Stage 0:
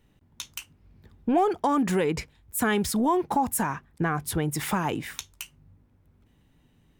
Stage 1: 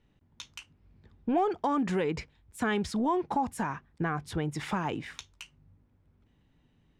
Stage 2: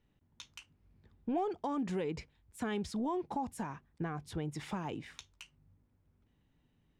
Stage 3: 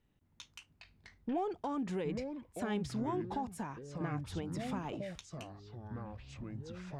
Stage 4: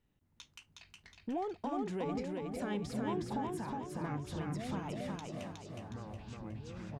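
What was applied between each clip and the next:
low-pass 5.3 kHz 12 dB/octave; trim -4.5 dB
dynamic bell 1.5 kHz, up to -6 dB, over -46 dBFS, Q 1; trim -6 dB
ever faster or slower copies 246 ms, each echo -6 st, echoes 3, each echo -6 dB; trim -1.5 dB
feedback delay 365 ms, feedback 46%, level -3 dB; trim -2 dB

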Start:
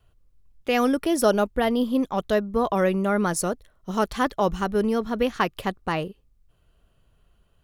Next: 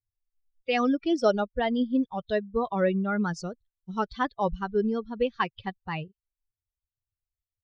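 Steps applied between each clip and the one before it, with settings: expander on every frequency bin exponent 2; steep low-pass 5.6 kHz 36 dB/octave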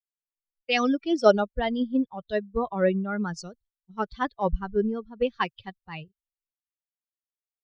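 three bands expanded up and down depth 100%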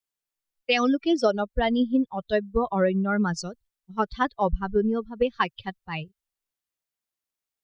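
compression 10:1, threshold -24 dBFS, peak gain reduction 13 dB; trim +6 dB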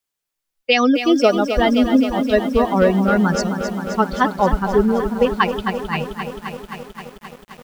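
bit-crushed delay 263 ms, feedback 80%, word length 8-bit, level -9 dB; trim +7 dB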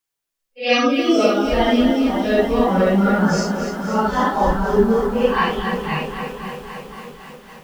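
phase randomisation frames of 200 ms

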